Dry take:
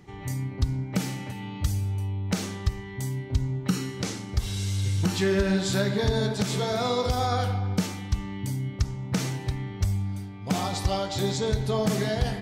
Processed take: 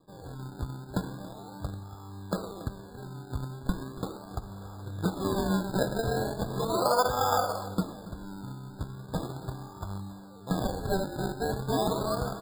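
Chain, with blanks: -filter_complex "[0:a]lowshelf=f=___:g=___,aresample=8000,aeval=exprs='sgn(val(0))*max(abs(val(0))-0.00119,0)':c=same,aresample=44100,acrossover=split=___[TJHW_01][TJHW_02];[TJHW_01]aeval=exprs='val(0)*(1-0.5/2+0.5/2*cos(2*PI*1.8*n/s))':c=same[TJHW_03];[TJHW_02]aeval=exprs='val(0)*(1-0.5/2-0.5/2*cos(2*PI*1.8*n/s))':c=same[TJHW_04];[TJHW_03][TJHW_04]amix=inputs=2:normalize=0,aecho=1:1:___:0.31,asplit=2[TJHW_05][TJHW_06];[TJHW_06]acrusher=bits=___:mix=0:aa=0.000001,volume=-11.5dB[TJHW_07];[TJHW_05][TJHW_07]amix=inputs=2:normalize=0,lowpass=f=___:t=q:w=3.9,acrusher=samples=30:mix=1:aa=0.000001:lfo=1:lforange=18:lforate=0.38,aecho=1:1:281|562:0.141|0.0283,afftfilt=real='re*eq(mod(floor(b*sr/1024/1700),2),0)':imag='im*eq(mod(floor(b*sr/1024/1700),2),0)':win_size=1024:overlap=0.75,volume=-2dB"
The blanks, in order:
160, -10.5, 520, 6.2, 4, 1300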